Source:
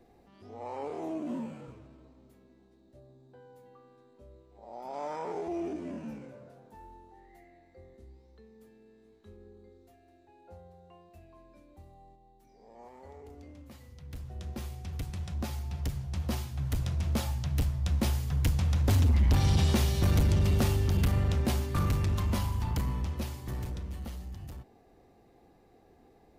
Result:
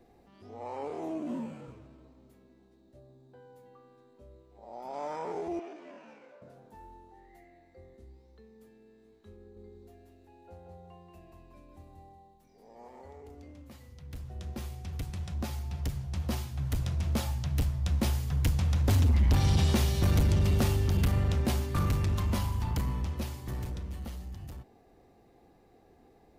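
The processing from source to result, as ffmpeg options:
-filter_complex "[0:a]asettb=1/sr,asplit=3[s0][s1][s2];[s0]atrim=end=5.594[s3];[s1]atrim=start=5.59:end=6.42,asetpts=PTS-STARTPTS,afade=t=in:d=0.004:c=qsin,afade=t=out:st=0.826:d=0.004:c=qsin,highpass=630,lowpass=4600[s4];[s2]atrim=start=6.416[s5];[s3][s4]acrossfade=d=0.004:c1=hsin:c2=qsin[s6];[s6][s5]acrossfade=d=0.004:c1=qsin:c2=hsin,asettb=1/sr,asplit=3[s7][s8][s9];[s7]atrim=end=9.384[s10];[s8]atrim=start=9.38:end=13.02,asetpts=PTS-STARTPTS,afade=t=in:d=0.004:c=qsin,afade=t=out:st=3.636:d=0.004:c=qsin,aecho=1:1:183|366|549|732|915:0.668|0.241|0.0866|0.0312|0.0112,atrim=end_sample=160524[s11];[s9]atrim=start=13.016[s12];[s10][s11]acrossfade=d=0.004:c1=hsin:c2=qsin[s13];[s13][s12]acrossfade=d=0.004:c1=qsin:c2=hsin"

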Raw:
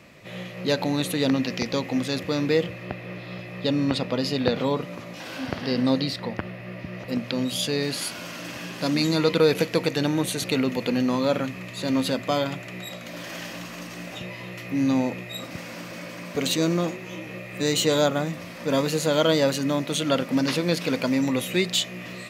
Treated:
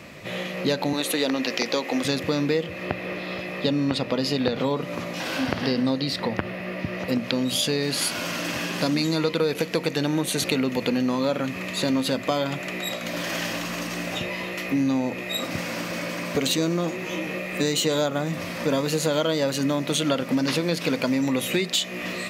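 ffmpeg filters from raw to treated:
-filter_complex "[0:a]asettb=1/sr,asplit=3[s0][s1][s2];[s0]atrim=end=0.934[s3];[s1]atrim=start=0.93:end=2.05,asetpts=PTS-STARTPTS,afade=t=in:d=0.004:c=qsin,afade=t=out:st=1.116:d=0.004:c=qsin,highpass=340[s4];[s2]atrim=start=2.046[s5];[s3][s4]acrossfade=d=0.004:c1=hsin:c2=qsin[s6];[s6][s5]acrossfade=d=0.004:c1=qsin:c2=hsin,acompressor=threshold=0.0398:ratio=5,bandreject=f=60:t=h:w=6,bandreject=f=120:t=h:w=6,bandreject=f=180:t=h:w=6,volume=2.37"

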